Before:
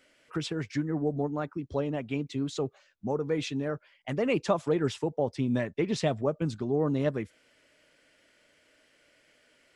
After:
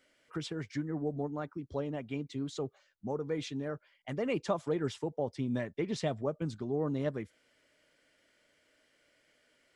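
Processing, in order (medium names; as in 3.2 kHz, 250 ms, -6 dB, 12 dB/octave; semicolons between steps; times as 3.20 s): band-stop 2.6 kHz, Q 15; trim -5.5 dB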